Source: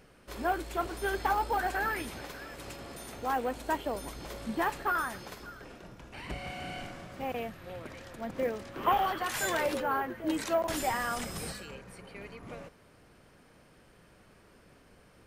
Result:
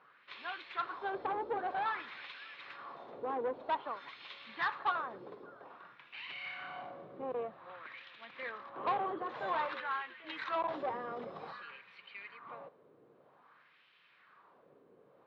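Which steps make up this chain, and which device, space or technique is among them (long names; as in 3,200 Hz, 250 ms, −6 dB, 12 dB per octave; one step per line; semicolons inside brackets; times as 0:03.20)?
wah-wah guitar rig (LFO wah 0.52 Hz 420–2,700 Hz, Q 2.3; tube saturation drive 32 dB, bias 0.3; loudspeaker in its box 100–4,300 Hz, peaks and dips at 140 Hz +7 dB, 640 Hz −3 dB, 1,100 Hz +7 dB, 3,800 Hz +8 dB)
level +3.5 dB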